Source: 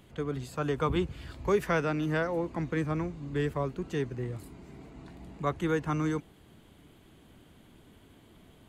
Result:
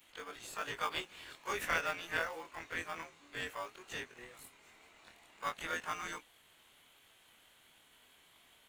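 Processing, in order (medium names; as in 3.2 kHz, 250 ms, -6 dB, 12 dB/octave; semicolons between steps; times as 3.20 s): short-time spectra conjugated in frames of 49 ms; high-pass 1.5 kHz 12 dB/octave; band-stop 4.8 kHz, Q 7.8; harmony voices +5 st -15 dB; in parallel at -9.5 dB: sample-and-hold 22×; on the sum: trim +5 dB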